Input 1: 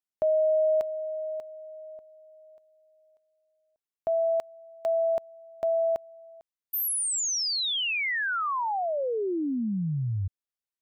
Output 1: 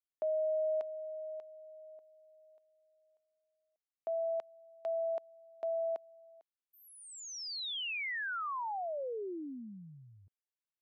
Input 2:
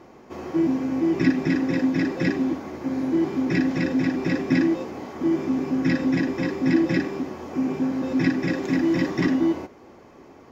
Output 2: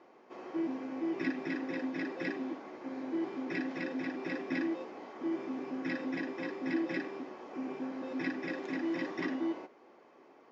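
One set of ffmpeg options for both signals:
ffmpeg -i in.wav -af "highpass=350,lowpass=4300,volume=-9dB" out.wav

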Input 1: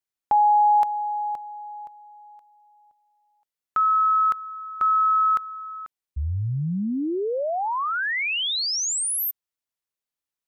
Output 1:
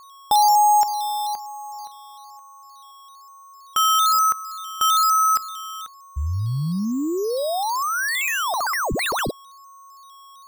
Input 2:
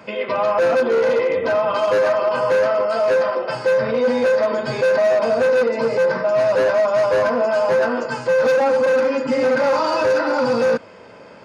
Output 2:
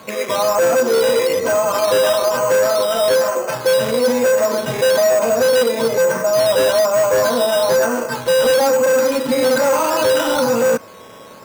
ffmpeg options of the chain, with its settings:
ffmpeg -i in.wav -af "aeval=exprs='val(0)+0.00562*sin(2*PI*1100*n/s)':channel_layout=same,acrusher=samples=8:mix=1:aa=0.000001:lfo=1:lforange=4.8:lforate=1.1,volume=2dB" out.wav

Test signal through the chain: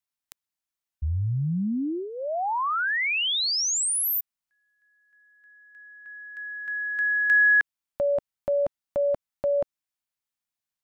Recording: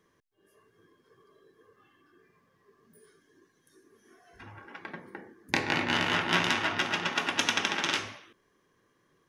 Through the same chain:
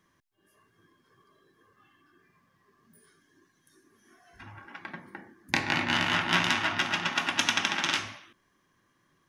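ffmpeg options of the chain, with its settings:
ffmpeg -i in.wav -af "equalizer=frequency=450:width_type=o:width=0.51:gain=-12,volume=1.5dB" out.wav

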